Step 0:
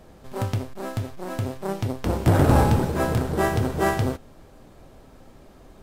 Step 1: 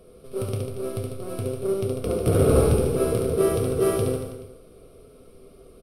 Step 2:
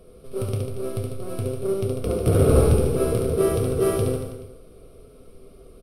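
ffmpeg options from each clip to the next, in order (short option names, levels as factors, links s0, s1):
-af "superequalizer=7b=3.16:9b=0.251:11b=0.282:15b=0.355:16b=3.55,aecho=1:1:70|147|231.7|324.9|427.4:0.631|0.398|0.251|0.158|0.1,volume=0.562"
-af "lowshelf=f=86:g=6.5"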